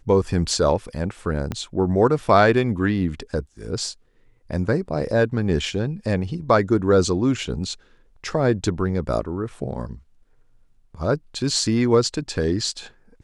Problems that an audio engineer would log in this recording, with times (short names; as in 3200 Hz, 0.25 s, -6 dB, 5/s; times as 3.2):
1.52 pop -13 dBFS